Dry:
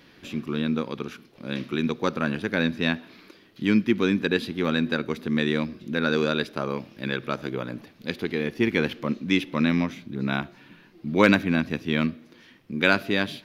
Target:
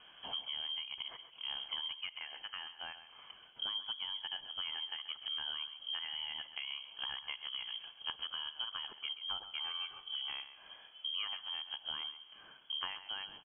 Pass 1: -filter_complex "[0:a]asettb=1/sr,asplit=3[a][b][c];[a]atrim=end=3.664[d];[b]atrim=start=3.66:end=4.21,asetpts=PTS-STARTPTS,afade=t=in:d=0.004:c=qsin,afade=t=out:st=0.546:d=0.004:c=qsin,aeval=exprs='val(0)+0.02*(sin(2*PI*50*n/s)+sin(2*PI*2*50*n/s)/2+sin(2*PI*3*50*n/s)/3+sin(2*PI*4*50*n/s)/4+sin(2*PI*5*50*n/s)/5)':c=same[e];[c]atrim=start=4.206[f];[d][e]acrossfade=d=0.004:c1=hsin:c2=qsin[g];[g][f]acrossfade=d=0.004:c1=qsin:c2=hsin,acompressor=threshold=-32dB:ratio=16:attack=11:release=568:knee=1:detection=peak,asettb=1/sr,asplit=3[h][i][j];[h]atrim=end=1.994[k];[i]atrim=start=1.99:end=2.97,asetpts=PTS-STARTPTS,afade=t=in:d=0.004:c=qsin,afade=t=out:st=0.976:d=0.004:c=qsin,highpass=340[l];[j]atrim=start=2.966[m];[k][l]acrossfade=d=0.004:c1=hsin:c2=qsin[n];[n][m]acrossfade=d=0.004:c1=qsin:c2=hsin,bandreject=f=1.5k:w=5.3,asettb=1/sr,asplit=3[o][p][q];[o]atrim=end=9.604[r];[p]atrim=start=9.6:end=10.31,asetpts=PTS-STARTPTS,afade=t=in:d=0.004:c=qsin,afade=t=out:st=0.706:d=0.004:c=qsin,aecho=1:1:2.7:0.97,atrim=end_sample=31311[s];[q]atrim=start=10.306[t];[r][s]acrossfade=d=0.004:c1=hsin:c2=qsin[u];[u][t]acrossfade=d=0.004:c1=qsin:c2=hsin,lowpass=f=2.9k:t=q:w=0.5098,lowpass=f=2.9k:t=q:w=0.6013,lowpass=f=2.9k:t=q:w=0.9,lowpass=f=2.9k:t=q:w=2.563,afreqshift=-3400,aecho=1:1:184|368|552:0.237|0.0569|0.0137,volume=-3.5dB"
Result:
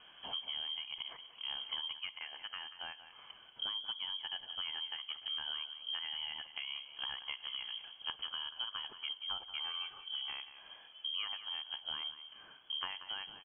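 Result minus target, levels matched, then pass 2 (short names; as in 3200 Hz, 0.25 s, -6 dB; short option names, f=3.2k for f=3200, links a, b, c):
echo 51 ms late
-filter_complex "[0:a]asettb=1/sr,asplit=3[a][b][c];[a]atrim=end=3.664[d];[b]atrim=start=3.66:end=4.21,asetpts=PTS-STARTPTS,afade=t=in:d=0.004:c=qsin,afade=t=out:st=0.546:d=0.004:c=qsin,aeval=exprs='val(0)+0.02*(sin(2*PI*50*n/s)+sin(2*PI*2*50*n/s)/2+sin(2*PI*3*50*n/s)/3+sin(2*PI*4*50*n/s)/4+sin(2*PI*5*50*n/s)/5)':c=same[e];[c]atrim=start=4.206[f];[d][e]acrossfade=d=0.004:c1=hsin:c2=qsin[g];[g][f]acrossfade=d=0.004:c1=qsin:c2=hsin,acompressor=threshold=-32dB:ratio=16:attack=11:release=568:knee=1:detection=peak,asettb=1/sr,asplit=3[h][i][j];[h]atrim=end=1.994[k];[i]atrim=start=1.99:end=2.97,asetpts=PTS-STARTPTS,afade=t=in:d=0.004:c=qsin,afade=t=out:st=0.976:d=0.004:c=qsin,highpass=340[l];[j]atrim=start=2.966[m];[k][l]acrossfade=d=0.004:c1=hsin:c2=qsin[n];[n][m]acrossfade=d=0.004:c1=qsin:c2=hsin,bandreject=f=1.5k:w=5.3,asettb=1/sr,asplit=3[o][p][q];[o]atrim=end=9.604[r];[p]atrim=start=9.6:end=10.31,asetpts=PTS-STARTPTS,afade=t=in:d=0.004:c=qsin,afade=t=out:st=0.706:d=0.004:c=qsin,aecho=1:1:2.7:0.97,atrim=end_sample=31311[s];[q]atrim=start=10.306[t];[r][s]acrossfade=d=0.004:c1=hsin:c2=qsin[u];[u][t]acrossfade=d=0.004:c1=qsin:c2=hsin,lowpass=f=2.9k:t=q:w=0.5098,lowpass=f=2.9k:t=q:w=0.6013,lowpass=f=2.9k:t=q:w=0.9,lowpass=f=2.9k:t=q:w=2.563,afreqshift=-3400,aecho=1:1:133|266|399:0.237|0.0569|0.0137,volume=-3.5dB"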